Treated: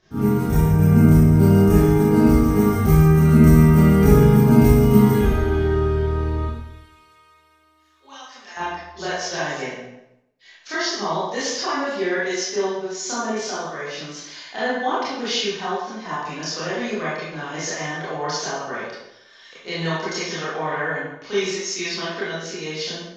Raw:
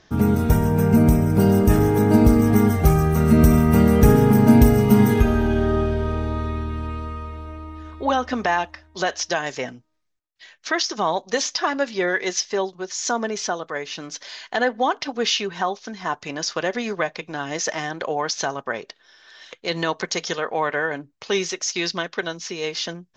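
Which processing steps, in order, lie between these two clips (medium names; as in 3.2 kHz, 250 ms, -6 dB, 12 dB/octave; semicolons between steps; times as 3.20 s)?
de-hum 56.6 Hz, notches 21; 6.45–8.57 s: differentiator; reverberation RT60 0.85 s, pre-delay 24 ms, DRR -11 dB; trim -11.5 dB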